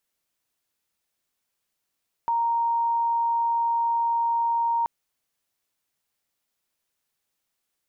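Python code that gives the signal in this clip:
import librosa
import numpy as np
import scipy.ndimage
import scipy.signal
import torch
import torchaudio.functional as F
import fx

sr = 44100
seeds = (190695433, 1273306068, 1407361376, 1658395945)

y = 10.0 ** (-20.5 / 20.0) * np.sin(2.0 * np.pi * (931.0 * (np.arange(round(2.58 * sr)) / sr)))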